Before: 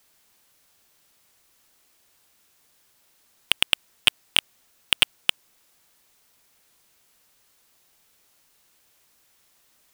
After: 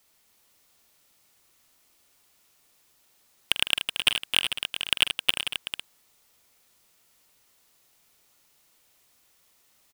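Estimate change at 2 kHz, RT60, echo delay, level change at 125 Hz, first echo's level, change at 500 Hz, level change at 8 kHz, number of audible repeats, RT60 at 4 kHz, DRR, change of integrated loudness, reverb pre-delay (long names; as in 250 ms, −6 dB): −1.0 dB, no reverb audible, 45 ms, −1.0 dB, −12.5 dB, −1.0 dB, −1.5 dB, 6, no reverb audible, no reverb audible, −2.5 dB, no reverb audible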